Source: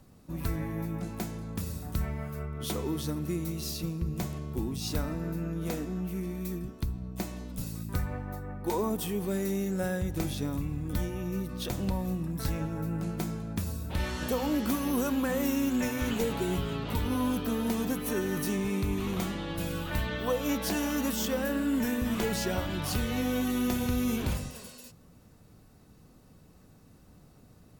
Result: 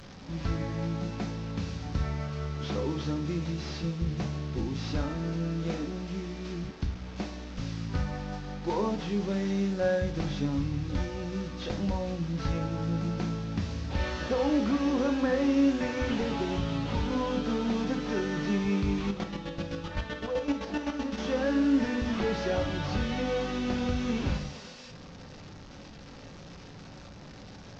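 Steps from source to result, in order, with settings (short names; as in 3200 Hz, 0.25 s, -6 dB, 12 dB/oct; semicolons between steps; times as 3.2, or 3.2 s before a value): delta modulation 32 kbps, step -41.5 dBFS; 19.07–21.18 chopper 7.8 Hz, depth 65%, duty 30%; reverb, pre-delay 3 ms, DRR 5.5 dB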